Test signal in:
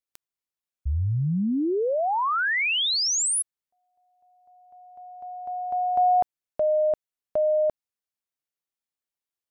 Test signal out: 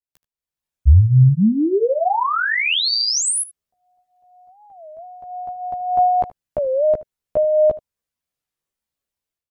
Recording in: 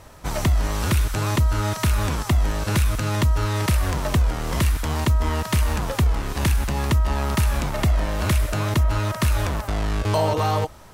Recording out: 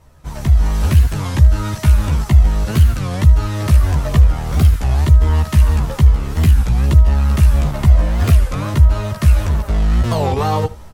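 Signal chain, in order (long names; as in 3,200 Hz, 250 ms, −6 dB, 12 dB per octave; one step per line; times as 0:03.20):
dynamic equaliser 600 Hz, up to −3 dB, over −33 dBFS, Q 5.5
multi-voice chorus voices 6, 0.5 Hz, delay 14 ms, depth 1.2 ms
automatic gain control gain up to 14 dB
low-shelf EQ 370 Hz +6 dB
on a send: single-tap delay 76 ms −18.5 dB
on the sum: wow of a warped record 33 1/3 rpm, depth 250 cents
level −6 dB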